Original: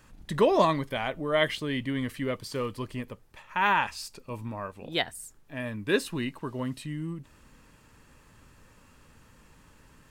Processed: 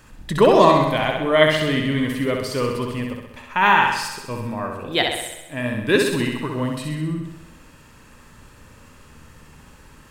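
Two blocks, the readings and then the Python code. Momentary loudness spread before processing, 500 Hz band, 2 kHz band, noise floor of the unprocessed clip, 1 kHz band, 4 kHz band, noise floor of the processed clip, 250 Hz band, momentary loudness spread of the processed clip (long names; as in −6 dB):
15 LU, +10.0 dB, +9.5 dB, −58 dBFS, +9.5 dB, +9.5 dB, −48 dBFS, +9.5 dB, 14 LU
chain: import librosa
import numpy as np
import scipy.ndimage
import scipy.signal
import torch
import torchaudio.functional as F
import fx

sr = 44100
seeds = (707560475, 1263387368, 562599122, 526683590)

y = fx.room_flutter(x, sr, wall_m=11.1, rt60_s=0.87)
y = fx.rev_spring(y, sr, rt60_s=1.3, pass_ms=(52,), chirp_ms=65, drr_db=13.0)
y = F.gain(torch.from_numpy(y), 7.5).numpy()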